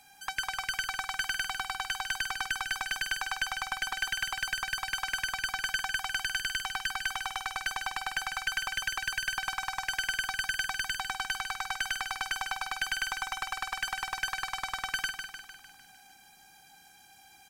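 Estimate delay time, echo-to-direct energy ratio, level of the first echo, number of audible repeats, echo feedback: 151 ms, -5.5 dB, -7.0 dB, 6, 56%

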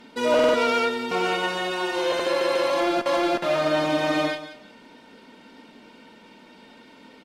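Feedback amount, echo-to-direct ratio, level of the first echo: 21%, -14.0 dB, -14.0 dB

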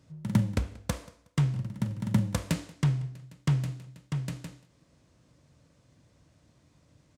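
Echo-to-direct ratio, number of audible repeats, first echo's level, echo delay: -22.0 dB, 2, -22.5 dB, 183 ms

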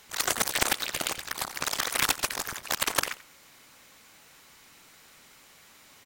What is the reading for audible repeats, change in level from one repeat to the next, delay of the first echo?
1, no regular repeats, 89 ms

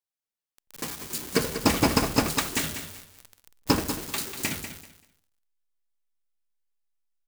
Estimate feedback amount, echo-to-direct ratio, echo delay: 22%, -10.0 dB, 193 ms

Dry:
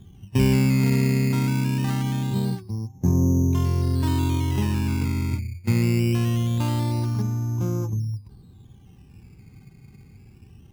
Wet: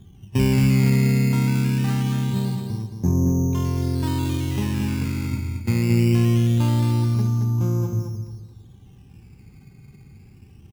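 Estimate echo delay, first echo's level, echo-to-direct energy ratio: 222 ms, -6.0 dB, -5.5 dB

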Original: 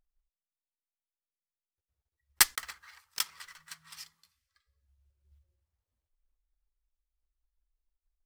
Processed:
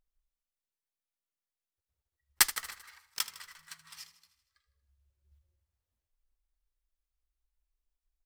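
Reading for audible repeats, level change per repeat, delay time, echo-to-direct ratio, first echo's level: 5, -4.5 dB, 78 ms, -13.0 dB, -15.0 dB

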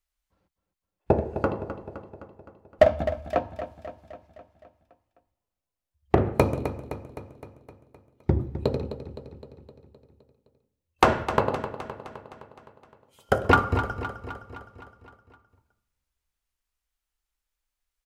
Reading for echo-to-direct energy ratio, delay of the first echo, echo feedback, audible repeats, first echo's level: -9.5 dB, 258 ms, 59%, 6, -11.5 dB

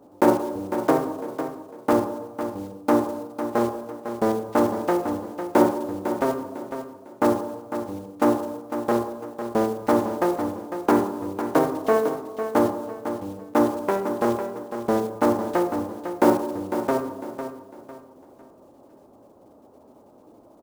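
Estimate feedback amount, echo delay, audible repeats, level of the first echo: 33%, 502 ms, 3, -9.5 dB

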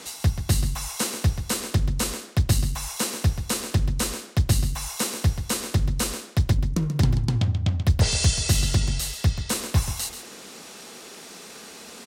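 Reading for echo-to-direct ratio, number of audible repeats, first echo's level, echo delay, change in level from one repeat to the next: -10.5 dB, 1, -10.5 dB, 134 ms, no regular repeats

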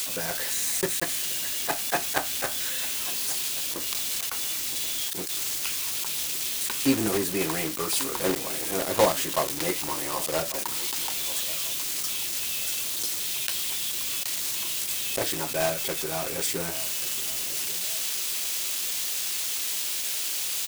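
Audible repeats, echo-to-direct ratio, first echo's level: 2, -17.5 dB, -18.0 dB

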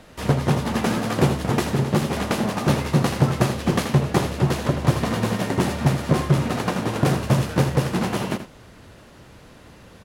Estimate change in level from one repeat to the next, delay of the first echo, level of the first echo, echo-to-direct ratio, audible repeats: no regular repeats, 81 ms, -11.0 dB, -11.0 dB, 1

